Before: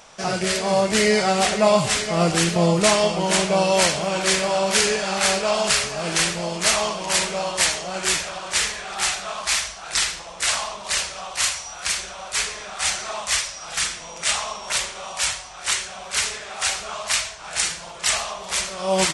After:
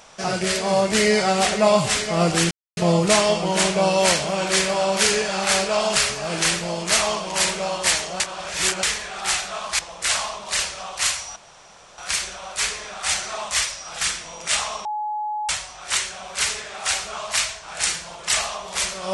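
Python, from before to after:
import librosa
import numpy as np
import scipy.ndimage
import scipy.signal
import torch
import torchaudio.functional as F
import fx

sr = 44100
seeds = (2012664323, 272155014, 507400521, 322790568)

y = fx.edit(x, sr, fx.insert_silence(at_s=2.51, length_s=0.26),
    fx.reverse_span(start_s=7.94, length_s=0.63),
    fx.cut(start_s=9.53, length_s=0.64),
    fx.insert_room_tone(at_s=11.74, length_s=0.62),
    fx.bleep(start_s=14.61, length_s=0.64, hz=846.0, db=-23.5), tone=tone)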